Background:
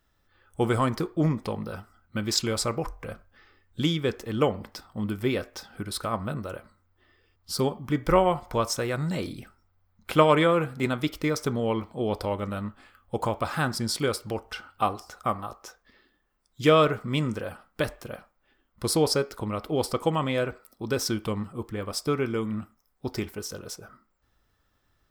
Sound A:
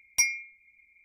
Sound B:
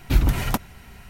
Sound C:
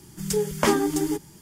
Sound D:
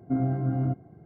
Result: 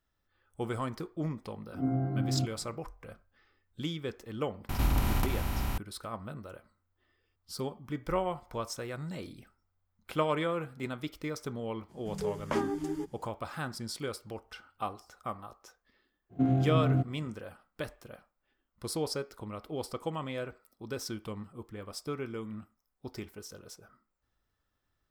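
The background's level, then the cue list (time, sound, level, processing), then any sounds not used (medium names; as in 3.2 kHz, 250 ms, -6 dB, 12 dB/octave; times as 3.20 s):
background -10.5 dB
1.72 s: add D -4.5 dB + reverse spectral sustain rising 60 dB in 0.31 s
4.69 s: add B -13.5 dB + spectral levelling over time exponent 0.2
11.88 s: add C -9.5 dB, fades 0.02 s + low-pass 2 kHz 6 dB/octave
16.29 s: add D -0.5 dB, fades 0.05 s + median filter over 25 samples
not used: A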